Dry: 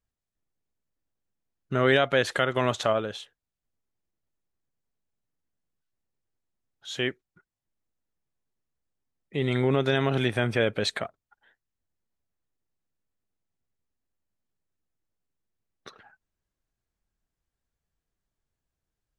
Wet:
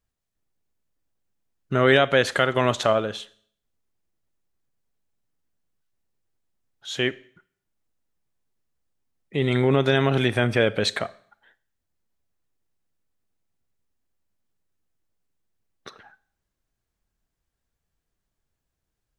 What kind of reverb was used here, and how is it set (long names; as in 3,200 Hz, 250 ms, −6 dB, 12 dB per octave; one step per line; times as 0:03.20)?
four-comb reverb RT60 0.56 s, combs from 29 ms, DRR 18.5 dB
level +4 dB